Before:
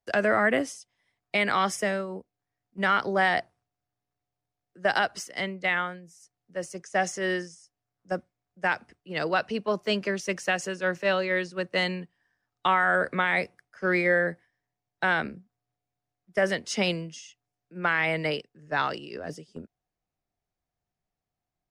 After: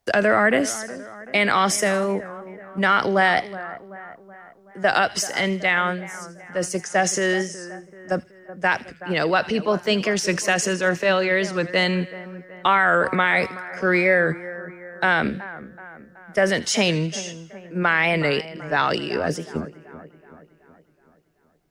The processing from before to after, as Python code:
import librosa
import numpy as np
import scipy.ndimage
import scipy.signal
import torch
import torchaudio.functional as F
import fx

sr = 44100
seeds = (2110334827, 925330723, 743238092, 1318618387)

p1 = fx.over_compress(x, sr, threshold_db=-35.0, ratio=-1.0)
p2 = x + (p1 * 10.0 ** (-2.5 / 20.0))
p3 = fx.echo_split(p2, sr, split_hz=2000.0, low_ms=376, high_ms=80, feedback_pct=52, wet_db=-15.5)
p4 = fx.record_warp(p3, sr, rpm=45.0, depth_cents=100.0)
y = p4 * 10.0 ** (4.5 / 20.0)